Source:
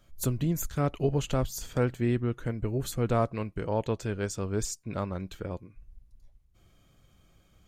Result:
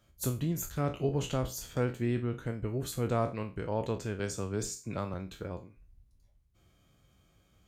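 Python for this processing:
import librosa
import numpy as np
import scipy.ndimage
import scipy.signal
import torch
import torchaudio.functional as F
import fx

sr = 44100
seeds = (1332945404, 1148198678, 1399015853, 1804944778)

y = fx.spec_trails(x, sr, decay_s=0.3)
y = scipy.signal.sosfilt(scipy.signal.butter(2, 41.0, 'highpass', fs=sr, output='sos'), y)
y = fx.band_squash(y, sr, depth_pct=40, at=(4.19, 5.14))
y = y * 10.0 ** (-4.0 / 20.0)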